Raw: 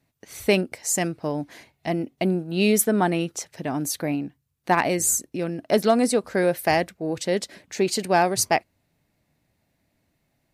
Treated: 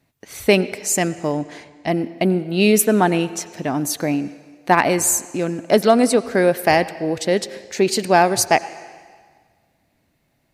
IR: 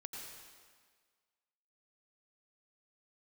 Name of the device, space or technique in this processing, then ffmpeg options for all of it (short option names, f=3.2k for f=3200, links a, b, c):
filtered reverb send: -filter_complex "[0:a]asplit=2[a][b];[b]highpass=160,lowpass=5.6k[c];[1:a]atrim=start_sample=2205[d];[c][d]afir=irnorm=-1:irlink=0,volume=-9dB[e];[a][e]amix=inputs=2:normalize=0,asettb=1/sr,asplit=3[f][g][h];[f]atrim=end=1.374[i];[g]atrim=start=1.37:end=1.88,asetpts=PTS-STARTPTS,afade=t=in:d=0.004:c=qsin,afade=t=out:st=0.506:d=0.004:c=qsin,lowpass=f=9.3k:w=0.5412,lowpass=f=9.3k:w=1.3066[j];[h]atrim=start=1.876[k];[i][j]acrossfade=d=0.004:c1=hsin:c2=qsin[l];[l][k]acrossfade=d=0.004:c1=qsin:c2=hsin,volume=4dB"